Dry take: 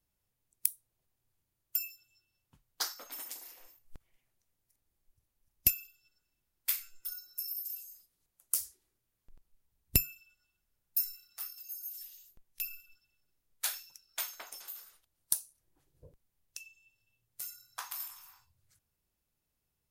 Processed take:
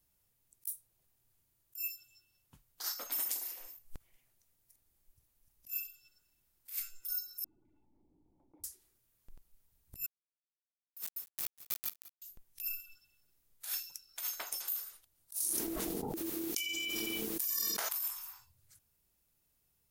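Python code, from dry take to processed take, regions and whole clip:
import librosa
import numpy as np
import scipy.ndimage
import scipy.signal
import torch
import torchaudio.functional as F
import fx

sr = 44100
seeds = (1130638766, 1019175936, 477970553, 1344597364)

y = fx.chain(x, sr, fx.formant_cascade(vowel='u'),
    fx.env_flatten(amount_pct=70), at=(7.44, 8.64))
y = fx.chain(y, sr, fx.notch_comb(f0_hz=300.0),
    fx.quant_dither(seeds[0], bits=6, dither='none'),
    fx.echo_single(ms=196, db=-21.5), at=(10.06, 12.22))
y = fx.chain(y, sr, fx.peak_eq(hz=8200.0, db=-3.0, octaves=0.34),
    fx.ring_mod(carrier_hz=330.0),
    fx.env_flatten(amount_pct=100), at=(15.4, 17.89))
y = fx.high_shelf(y, sr, hz=7000.0, db=7.5)
y = fx.over_compress(y, sr, threshold_db=-37.0, ratio=-1.0)
y = y * librosa.db_to_amplitude(-1.5)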